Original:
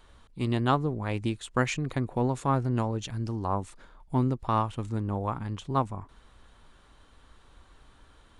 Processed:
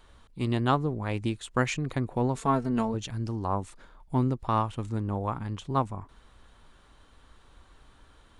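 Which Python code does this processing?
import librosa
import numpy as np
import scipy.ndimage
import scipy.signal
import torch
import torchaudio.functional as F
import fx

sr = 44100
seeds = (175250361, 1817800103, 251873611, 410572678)

y = fx.comb(x, sr, ms=4.5, depth=0.69, at=(2.35, 2.94))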